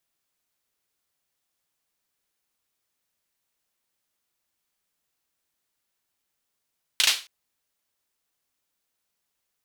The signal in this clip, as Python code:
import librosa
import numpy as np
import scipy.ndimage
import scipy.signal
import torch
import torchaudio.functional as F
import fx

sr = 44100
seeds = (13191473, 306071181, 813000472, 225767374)

y = fx.drum_clap(sr, seeds[0], length_s=0.27, bursts=3, spacing_ms=36, hz=3400.0, decay_s=0.31)